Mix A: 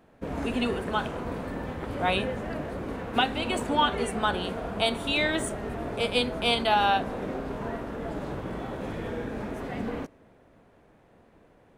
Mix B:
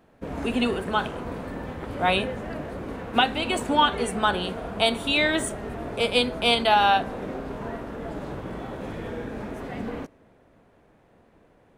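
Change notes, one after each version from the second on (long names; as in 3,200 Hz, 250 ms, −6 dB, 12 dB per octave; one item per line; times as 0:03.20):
speech +4.0 dB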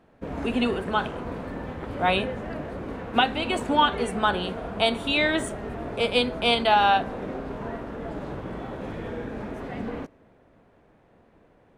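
master: add high-shelf EQ 6,600 Hz −9 dB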